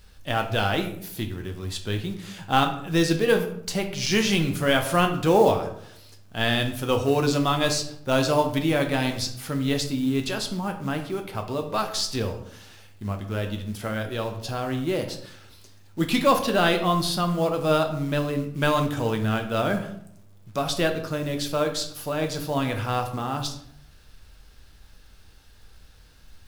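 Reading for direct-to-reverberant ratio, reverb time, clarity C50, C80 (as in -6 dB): 4.5 dB, 0.70 s, 9.5 dB, 12.5 dB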